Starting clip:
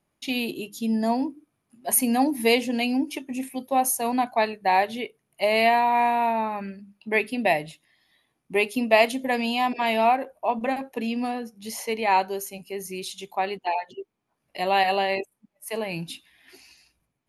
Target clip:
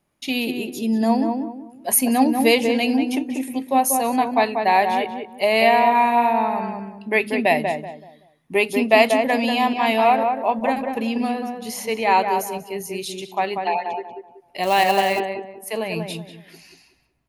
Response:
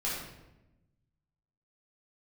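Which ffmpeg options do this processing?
-filter_complex "[0:a]asplit=2[s0][s1];[s1]adelay=189,lowpass=f=1400:p=1,volume=0.631,asplit=2[s2][s3];[s3]adelay=189,lowpass=f=1400:p=1,volume=0.32,asplit=2[s4][s5];[s5]adelay=189,lowpass=f=1400:p=1,volume=0.32,asplit=2[s6][s7];[s7]adelay=189,lowpass=f=1400:p=1,volume=0.32[s8];[s0][s2][s4][s6][s8]amix=inputs=5:normalize=0,asettb=1/sr,asplit=3[s9][s10][s11];[s9]atrim=end=14.634[s12];[s10]atrim=start=14.63:end=15.2,asetpts=PTS-STARTPTS,afade=t=in:d=0.004:c=qsin,afade=t=out:st=0.566:d=0.004:c=qsin,acrusher=bits=4:mode=log:mix=0:aa=0.000001[s13];[s11]atrim=start=15.196[s14];[s12][s13]acrossfade=d=0.004:c1=hsin:c2=qsin[s15];[s15][s14]acrossfade=d=0.004:c1=qsin:c2=hsin,volume=1.5"

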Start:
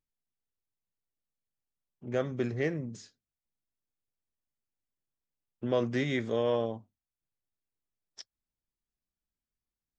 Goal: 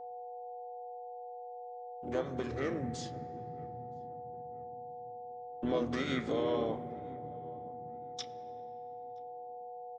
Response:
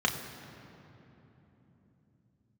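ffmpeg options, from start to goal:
-filter_complex "[0:a]agate=range=0.2:threshold=0.00178:ratio=16:detection=peak,lowshelf=f=410:g=-8,aeval=exprs='val(0)+0.00224*sin(2*PI*730*n/s)':c=same,alimiter=level_in=2.24:limit=0.0631:level=0:latency=1:release=186,volume=0.447,asubboost=boost=3.5:cutoff=66,asplit=3[s0][s1][s2];[s1]asetrate=29433,aresample=44100,atempo=1.49831,volume=0.631[s3];[s2]asetrate=52444,aresample=44100,atempo=0.840896,volume=0.224[s4];[s0][s3][s4]amix=inputs=3:normalize=0,asplit=2[s5][s6];[s6]adelay=972,lowpass=f=990:p=1,volume=0.0841,asplit=2[s7][s8];[s8]adelay=972,lowpass=f=990:p=1,volume=0.48,asplit=2[s9][s10];[s10]adelay=972,lowpass=f=990:p=1,volume=0.48[s11];[s5][s7][s9][s11]amix=inputs=4:normalize=0,asplit=2[s12][s13];[1:a]atrim=start_sample=2205,highshelf=f=3300:g=-9.5[s14];[s13][s14]afir=irnorm=-1:irlink=0,volume=0.2[s15];[s12][s15]amix=inputs=2:normalize=0,volume=1.68"

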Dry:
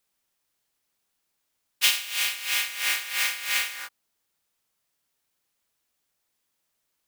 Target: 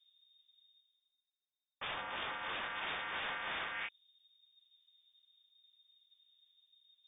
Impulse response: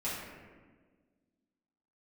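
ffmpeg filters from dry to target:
-af "anlmdn=0.00158,tiltshelf=f=970:g=6,areverse,acompressor=mode=upward:threshold=0.00355:ratio=2.5,areverse,aeval=exprs='(mod(26.6*val(0)+1,2)-1)/26.6':c=same,lowpass=f=3100:t=q:w=0.5098,lowpass=f=3100:t=q:w=0.6013,lowpass=f=3100:t=q:w=0.9,lowpass=f=3100:t=q:w=2.563,afreqshift=-3700,volume=1.26"

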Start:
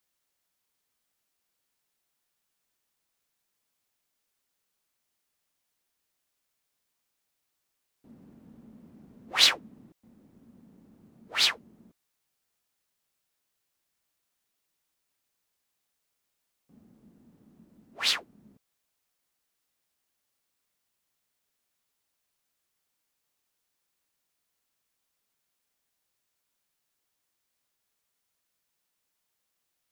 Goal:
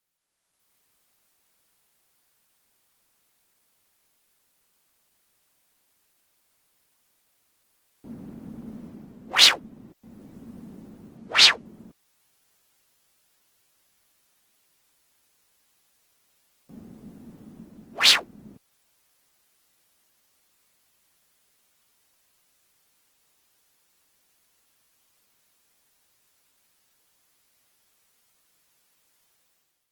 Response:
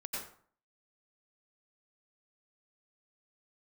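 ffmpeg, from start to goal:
-filter_complex "[0:a]asettb=1/sr,asplit=3[s0][s1][s2];[s0]atrim=end=11.174[s3];[s1]atrim=start=11.17:end=11.66,asetpts=PTS-STARTPTS,afade=t=in:d=0.004:c=qsin,afade=t=out:st=0.486:d=0.004:c=qsin,lowpass=8000[s4];[s2]atrim=start=11.656[s5];[s3][s4]acrossfade=d=0.004:c1=hsin:c2=qsin[s6];[s6][s5]acrossfade=d=0.004:c1=qsin:c2=hsin,dynaudnorm=f=150:g=7:m=4.47" -ar 48000 -c:a libopus -b:a 20k

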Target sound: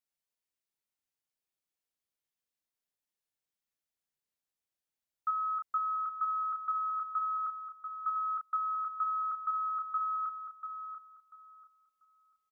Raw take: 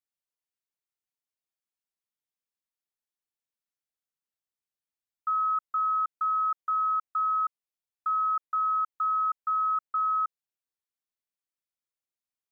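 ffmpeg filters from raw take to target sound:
-filter_complex "[0:a]equalizer=f=1200:t=o:w=0.77:g=-2.5,asplit=2[s0][s1];[s1]adelay=34,volume=0.398[s2];[s0][s2]amix=inputs=2:normalize=0,asplit=2[s3][s4];[s4]adelay=690,lowpass=f=1200:p=1,volume=0.531,asplit=2[s5][s6];[s6]adelay=690,lowpass=f=1200:p=1,volume=0.31,asplit=2[s7][s8];[s8]adelay=690,lowpass=f=1200:p=1,volume=0.31,asplit=2[s9][s10];[s10]adelay=690,lowpass=f=1200:p=1,volume=0.31[s11];[s5][s7][s9][s11]amix=inputs=4:normalize=0[s12];[s3][s12]amix=inputs=2:normalize=0"

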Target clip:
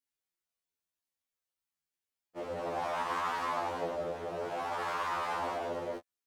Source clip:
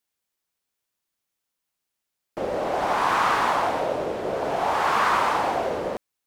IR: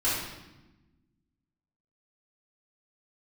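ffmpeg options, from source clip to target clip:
-af "alimiter=limit=0.178:level=0:latency=1:release=54,flanger=delay=19.5:depth=5.4:speed=0.86,afftfilt=real='re*2*eq(mod(b,4),0)':imag='im*2*eq(mod(b,4),0)':win_size=2048:overlap=0.75,volume=0.562"

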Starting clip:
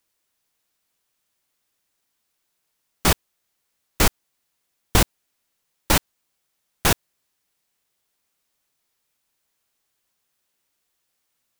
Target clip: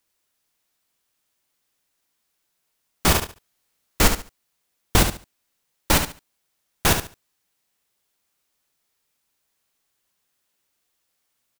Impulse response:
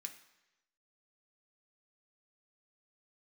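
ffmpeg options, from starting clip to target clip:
-filter_complex "[0:a]asettb=1/sr,asplit=3[s0][s1][s2];[s0]atrim=end=3.104[s3];[s1]atrim=start=3.1:end=4.07,asetpts=PTS-STARTPTS,afade=t=in:d=0.004:c=qsin,afade=t=out:st=0.966:d=0.004:c=qsin,asplit=2[s4][s5];[s5]adelay=45,volume=0.668[s6];[s4][s6]amix=inputs=2:normalize=0,atrim=end_sample=42777[s7];[s2]atrim=start=4.066[s8];[s3][s7]acrossfade=d=0.004:c1=hsin:c2=qsin[s9];[s9][s8]acrossfade=d=0.004:c1=qsin:c2=hsin,aecho=1:1:71|142|213:0.398|0.0876|0.0193"

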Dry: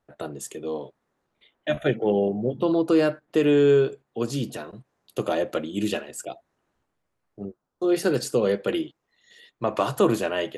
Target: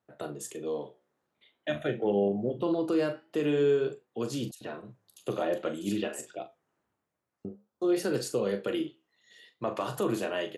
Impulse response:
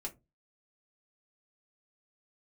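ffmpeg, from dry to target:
-filter_complex "[0:a]highpass=93,alimiter=limit=0.168:level=0:latency=1:release=133,flanger=delay=9:depth=6:regen=-78:speed=0.49:shape=triangular,asplit=2[s0][s1];[s1]adelay=40,volume=0.316[s2];[s0][s2]amix=inputs=2:normalize=0,asettb=1/sr,asplit=3[s3][s4][s5];[s3]atrim=end=4.514[s6];[s4]atrim=start=4.51:end=7.45,asetpts=PTS-STARTPTS,afade=t=in:d=0.004:c=qsin,afade=t=out:st=2.936:d=0.004:c=qsin,acrossover=split=3900[s7][s8];[s7]adelay=100[s9];[s9][s8]amix=inputs=2:normalize=0,atrim=end_sample=129654[s10];[s5]atrim=start=7.446[s11];[s6][s10]acrossfade=d=0.004:c1=hsin:c2=qsin[s12];[s12][s11]acrossfade=d=0.004:c1=qsin:c2=hsin"

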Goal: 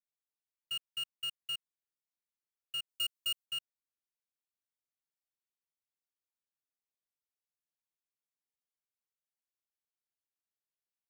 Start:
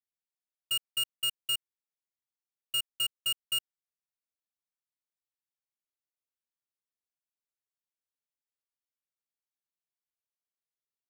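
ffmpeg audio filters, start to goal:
-filter_complex "[0:a]acrossover=split=5900[s0][s1];[s1]acompressor=threshold=0.00708:ratio=4:attack=1:release=60[s2];[s0][s2]amix=inputs=2:normalize=0,asettb=1/sr,asplit=3[s3][s4][s5];[s3]atrim=end=2.894[s6];[s4]atrim=start=2.89:end=3.46,asetpts=PTS-STARTPTS,afade=t=in:d=0.004:c=qsin,afade=t=out:st=0.566:d=0.004:c=qsin,highshelf=f=4000:g=9.5[s7];[s5]atrim=start=3.456[s8];[s6][s7]acrossfade=d=0.004:c1=hsin:c2=qsin[s9];[s9][s8]acrossfade=d=0.004:c1=qsin:c2=hsin,volume=0.473"

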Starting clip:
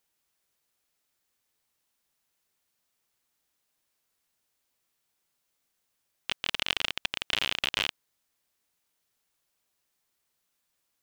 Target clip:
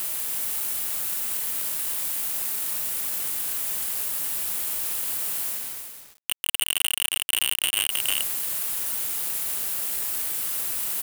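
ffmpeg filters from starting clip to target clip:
-filter_complex "[0:a]equalizer=f=2900:w=7.5:g=7.5,areverse,acompressor=mode=upward:threshold=0.0316:ratio=2.5,areverse,asplit=2[s0][s1];[s1]highpass=f=720:p=1,volume=11.2,asoftclip=type=tanh:threshold=0.631[s2];[s0][s2]amix=inputs=2:normalize=0,lowpass=f=3400:p=1,volume=0.501,aexciter=amount=11.5:drive=6.5:freq=7700,acrusher=bits=4:mix=0:aa=0.000001,aeval=exprs='sgn(val(0))*max(abs(val(0))-0.0335,0)':c=same,asplit=2[s3][s4];[s4]aecho=0:1:315:0.447[s5];[s3][s5]amix=inputs=2:normalize=0,alimiter=level_in=2.11:limit=0.891:release=50:level=0:latency=1,volume=0.447"

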